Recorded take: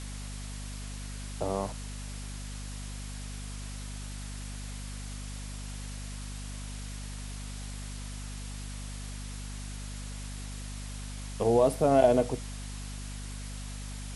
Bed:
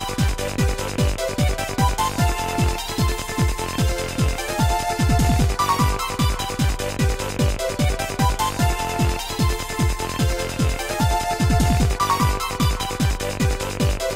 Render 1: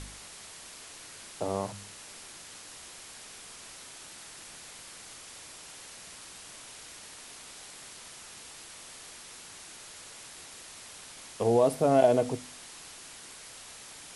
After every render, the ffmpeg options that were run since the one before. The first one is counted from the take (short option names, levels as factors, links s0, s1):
-af "bandreject=f=50:t=h:w=4,bandreject=f=100:t=h:w=4,bandreject=f=150:t=h:w=4,bandreject=f=200:t=h:w=4,bandreject=f=250:t=h:w=4"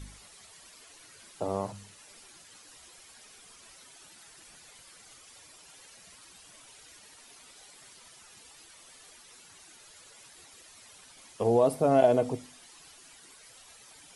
-af "afftdn=nr=11:nf=-48"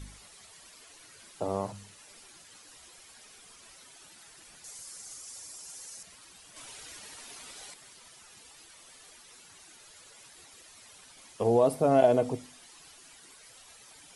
-filter_complex "[0:a]asettb=1/sr,asplit=3[s0][s1][s2];[s0]atrim=end=4.644[s3];[s1]atrim=start=4.64:end=6.03,asetpts=PTS-STARTPTS,afade=t=in:d=0.004:c=qsin,afade=t=out:st=1.386:d=0.004:c=qsin,highshelf=f=4500:t=q:w=1.5:g=8.5[s4];[s2]atrim=start=6.026[s5];[s3][s4]acrossfade=d=0.004:c1=hsin:c2=qsin[s6];[s6][s5]acrossfade=d=0.004:c1=qsin:c2=hsin,asettb=1/sr,asplit=3[s7][s8][s9];[s7]atrim=end=6.564[s10];[s8]atrim=start=6.56:end=7.74,asetpts=PTS-STARTPTS,afade=t=in:d=0.004:c=qsin,afade=t=out:st=1.176:d=0.004:c=qsin,acontrast=69[s11];[s9]atrim=start=7.736[s12];[s10][s11]acrossfade=d=0.004:c1=hsin:c2=qsin[s13];[s13][s12]acrossfade=d=0.004:c1=qsin:c2=hsin"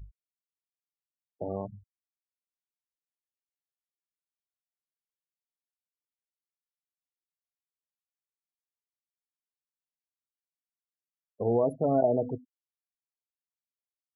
-af "equalizer=f=3000:w=0.34:g=-10.5,afftfilt=real='re*gte(hypot(re,im),0.0316)':imag='im*gte(hypot(re,im),0.0316)':win_size=1024:overlap=0.75"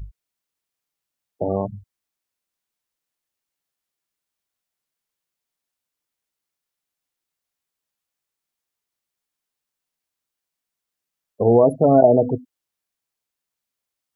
-af "volume=3.76"